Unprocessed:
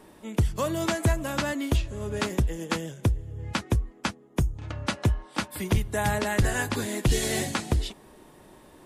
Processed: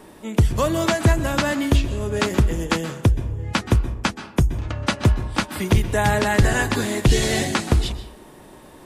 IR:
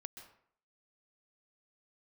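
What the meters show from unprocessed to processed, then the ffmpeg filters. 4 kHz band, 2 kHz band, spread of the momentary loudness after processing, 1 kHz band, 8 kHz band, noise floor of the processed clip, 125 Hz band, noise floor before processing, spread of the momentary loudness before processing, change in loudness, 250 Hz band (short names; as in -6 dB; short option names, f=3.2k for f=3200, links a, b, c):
+7.0 dB, +7.0 dB, 7 LU, +7.0 dB, +4.5 dB, -45 dBFS, +7.0 dB, -53 dBFS, 7 LU, +7.0 dB, +7.0 dB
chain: -filter_complex "[0:a]acrossover=split=7400[a][b];[b]acompressor=threshold=-44dB:ratio=4:attack=1:release=60[c];[a][c]amix=inputs=2:normalize=0,asplit=2[d][e];[1:a]atrim=start_sample=2205,afade=t=out:st=0.42:d=0.01,atrim=end_sample=18963[f];[e][f]afir=irnorm=-1:irlink=0,volume=7dB[g];[d][g]amix=inputs=2:normalize=0"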